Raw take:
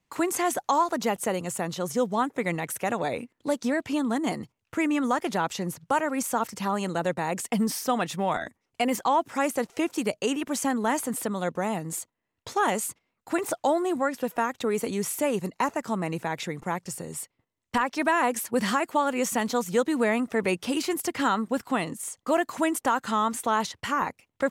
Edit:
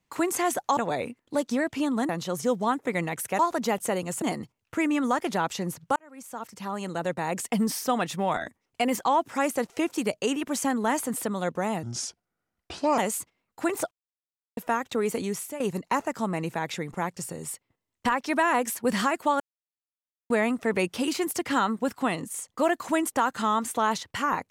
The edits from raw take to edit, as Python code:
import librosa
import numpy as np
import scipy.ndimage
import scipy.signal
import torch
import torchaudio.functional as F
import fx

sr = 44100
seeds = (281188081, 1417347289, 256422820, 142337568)

y = fx.edit(x, sr, fx.swap(start_s=0.77, length_s=0.83, other_s=2.9, other_length_s=1.32),
    fx.fade_in_span(start_s=5.96, length_s=1.41),
    fx.speed_span(start_s=11.83, length_s=0.84, speed=0.73),
    fx.silence(start_s=13.6, length_s=0.66),
    fx.fade_out_to(start_s=14.91, length_s=0.38, floor_db=-14.5),
    fx.silence(start_s=19.09, length_s=0.9), tone=tone)